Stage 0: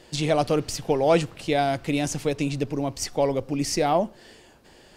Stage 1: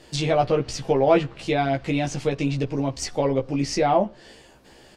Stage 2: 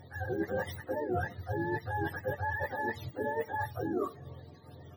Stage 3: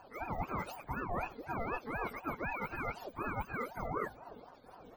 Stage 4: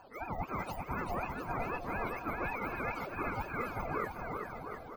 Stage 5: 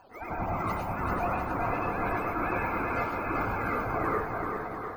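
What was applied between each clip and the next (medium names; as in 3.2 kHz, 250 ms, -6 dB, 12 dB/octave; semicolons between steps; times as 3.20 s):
low-pass that closes with the level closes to 2.9 kHz, closed at -19 dBFS; doubling 15 ms -3 dB
spectrum inverted on a logarithmic axis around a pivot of 490 Hz; reverse; compression 6:1, threshold -31 dBFS, peak gain reduction 17 dB; reverse
ring modulator with a swept carrier 600 Hz, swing 45%, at 4 Hz; trim -1.5 dB
bouncing-ball echo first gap 390 ms, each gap 0.8×, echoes 5
plate-style reverb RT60 0.83 s, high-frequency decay 0.3×, pre-delay 85 ms, DRR -5 dB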